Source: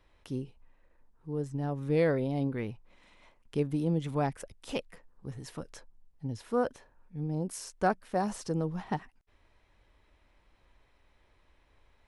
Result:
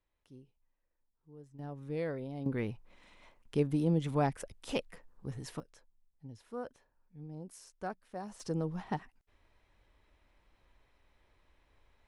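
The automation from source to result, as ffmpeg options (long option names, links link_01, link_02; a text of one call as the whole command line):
ffmpeg -i in.wav -af "asetnsamples=nb_out_samples=441:pad=0,asendcmd='1.59 volume volume -10dB;2.46 volume volume 0dB;5.6 volume volume -12.5dB;8.4 volume volume -3dB',volume=-19dB" out.wav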